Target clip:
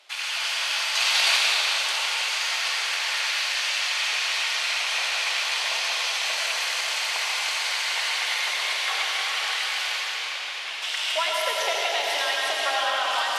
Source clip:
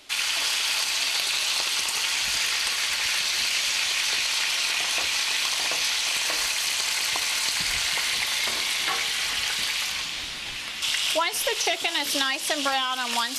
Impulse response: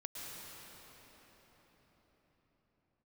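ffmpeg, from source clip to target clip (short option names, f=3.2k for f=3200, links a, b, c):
-filter_complex "[0:a]highpass=f=530:w=0.5412,highpass=f=530:w=1.3066,highshelf=f=5.3k:g=-10.5,asettb=1/sr,asplit=3[a][b][c];[a]atrim=end=0.954[d];[b]atrim=start=0.95:end=1.37,asetpts=PTS-STARTPTS,afade=t=in:d=0.004:c=qsin,afade=t=out:st=0.416:d=0.004:c=qsin,acontrast=79[e];[c]atrim=start=1.366[f];[d][e]acrossfade=d=0.004:c1=hsin:c2=qsin[g];[g][f]acrossfade=d=0.004:c1=qsin:c2=hsin[h];[1:a]atrim=start_sample=2205,asetrate=57330,aresample=44100[i];[h][i]afir=irnorm=-1:irlink=0,volume=6dB"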